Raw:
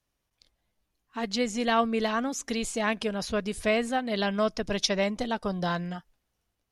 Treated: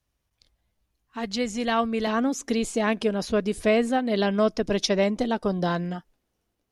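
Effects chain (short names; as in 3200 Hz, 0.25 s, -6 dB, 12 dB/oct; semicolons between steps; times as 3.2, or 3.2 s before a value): bell 67 Hz +8 dB 1.8 oct, from 2.07 s 330 Hz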